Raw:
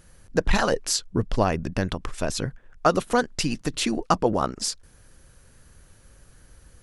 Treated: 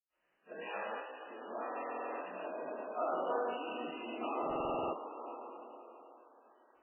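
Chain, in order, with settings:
leveller curve on the samples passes 1
brickwall limiter −15 dBFS, peak gain reduction 10 dB
first difference
convolution reverb RT60 3.6 s, pre-delay 86 ms
downward compressor 2 to 1, threshold −42 dBFS, peak gain reduction 6.5 dB
flat-topped bell 510 Hz +9.5 dB 2.5 octaves, from 0:02.44 +16 dB
buffer that repeats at 0:01.70/0:04.42, samples 2,048, times 10
level +2.5 dB
MP3 8 kbit/s 12,000 Hz

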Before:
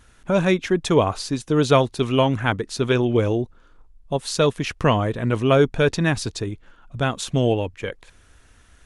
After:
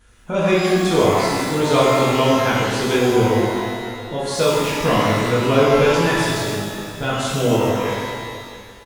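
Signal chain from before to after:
single-tap delay 672 ms −17 dB
reverb with rising layers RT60 1.6 s, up +12 semitones, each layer −8 dB, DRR −8 dB
level −5.5 dB

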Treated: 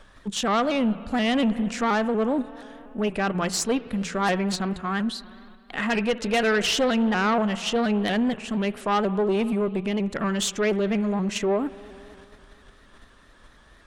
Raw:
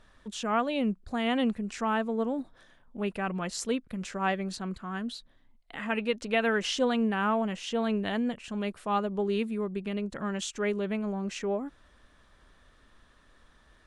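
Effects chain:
mains-hum notches 60/120/180 Hz
spring reverb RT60 3 s, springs 52 ms, chirp 60 ms, DRR 17.5 dB
in parallel at −1 dB: output level in coarse steps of 19 dB
on the sum: harmonic generator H 5 −14 dB, 6 −20 dB, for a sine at −13 dBFS
pitch modulation by a square or saw wave saw up 4.2 Hz, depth 100 cents

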